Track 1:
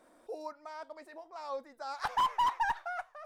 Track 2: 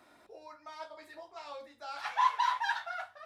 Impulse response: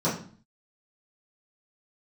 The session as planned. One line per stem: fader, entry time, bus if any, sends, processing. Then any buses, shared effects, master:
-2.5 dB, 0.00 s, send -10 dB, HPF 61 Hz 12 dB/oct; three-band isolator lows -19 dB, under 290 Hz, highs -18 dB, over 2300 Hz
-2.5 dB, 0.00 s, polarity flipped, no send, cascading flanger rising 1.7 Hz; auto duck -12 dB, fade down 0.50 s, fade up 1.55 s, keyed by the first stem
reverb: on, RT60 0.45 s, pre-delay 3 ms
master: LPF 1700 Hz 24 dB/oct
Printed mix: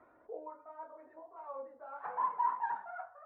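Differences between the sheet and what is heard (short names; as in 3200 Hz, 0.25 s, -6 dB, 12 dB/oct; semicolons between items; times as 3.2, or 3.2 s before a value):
stem 1 -2.5 dB -> -10.5 dB; stem 2 -2.5 dB -> +3.5 dB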